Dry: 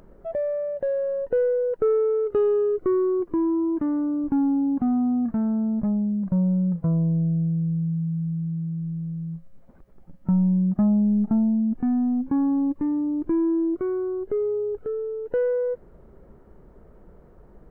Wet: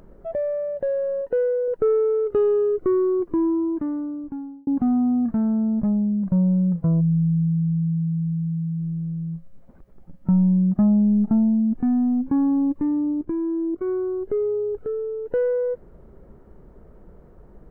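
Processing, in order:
0:01.21–0:01.68: low-shelf EQ 160 Hz −11.5 dB
0:07.01–0:08.80: gain on a spectral selection 230–1,700 Hz −20 dB
0:13.12–0:13.88: output level in coarse steps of 13 dB
low-shelf EQ 430 Hz +3 dB
0:03.45–0:04.67: fade out

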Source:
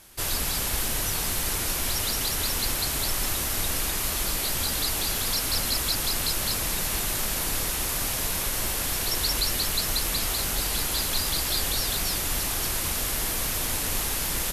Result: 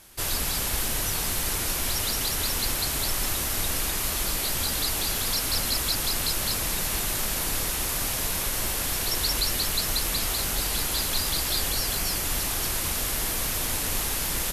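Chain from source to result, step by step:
0:11.69–0:12.24: notch filter 3,700 Hz, Q 11

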